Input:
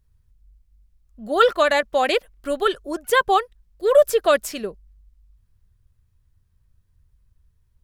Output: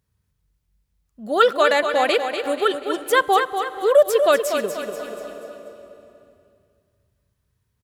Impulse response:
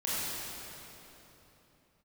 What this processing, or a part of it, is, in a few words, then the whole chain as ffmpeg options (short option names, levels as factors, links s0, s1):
ducked reverb: -filter_complex "[0:a]highpass=130,aecho=1:1:242|484|726|968|1210:0.422|0.186|0.0816|0.0359|0.0158,asplit=3[s0][s1][s2];[1:a]atrim=start_sample=2205[s3];[s1][s3]afir=irnorm=-1:irlink=0[s4];[s2]apad=whole_len=377115[s5];[s4][s5]sidechaincompress=threshold=0.0501:ratio=4:attack=6.6:release=643,volume=0.178[s6];[s0][s6]amix=inputs=2:normalize=0"